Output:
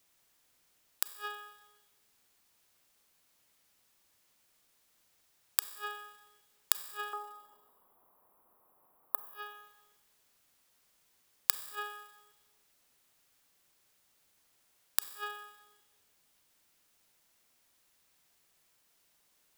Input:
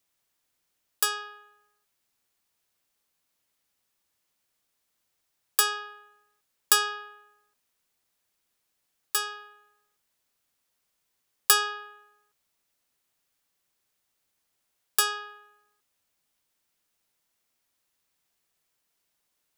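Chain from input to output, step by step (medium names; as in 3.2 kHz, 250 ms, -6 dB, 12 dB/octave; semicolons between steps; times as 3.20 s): 7.13–9.26 s: FFT filter 100 Hz 0 dB, 1.1 kHz +15 dB, 1.6 kHz -5 dB, 6.2 kHz -28 dB, 12 kHz +3 dB; inverted gate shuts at -23 dBFS, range -41 dB; Schroeder reverb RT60 1.5 s, combs from 31 ms, DRR 12.5 dB; trim +6 dB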